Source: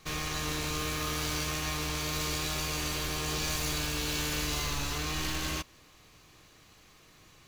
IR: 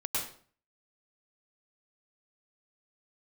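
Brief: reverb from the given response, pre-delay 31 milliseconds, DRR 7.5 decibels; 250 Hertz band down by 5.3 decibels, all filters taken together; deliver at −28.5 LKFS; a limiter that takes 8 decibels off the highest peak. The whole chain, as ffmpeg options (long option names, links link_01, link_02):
-filter_complex "[0:a]equalizer=frequency=250:width_type=o:gain=-8.5,alimiter=level_in=3dB:limit=-24dB:level=0:latency=1,volume=-3dB,asplit=2[link_01][link_02];[1:a]atrim=start_sample=2205,adelay=31[link_03];[link_02][link_03]afir=irnorm=-1:irlink=0,volume=-13dB[link_04];[link_01][link_04]amix=inputs=2:normalize=0,volume=6.5dB"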